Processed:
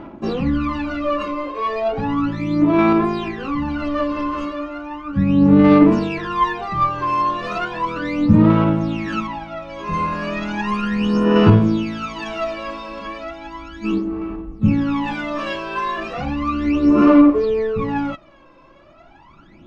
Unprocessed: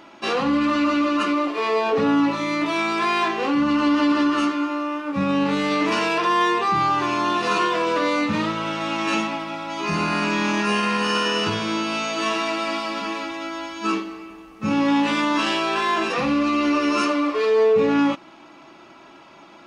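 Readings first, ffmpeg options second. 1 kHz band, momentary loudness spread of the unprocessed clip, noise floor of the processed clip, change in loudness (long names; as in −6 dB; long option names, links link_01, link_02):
−0.5 dB, 7 LU, −48 dBFS, +3.0 dB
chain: -af "aphaser=in_gain=1:out_gain=1:delay=1.9:decay=0.8:speed=0.35:type=sinusoidal,aemphasis=mode=reproduction:type=riaa,volume=-6dB"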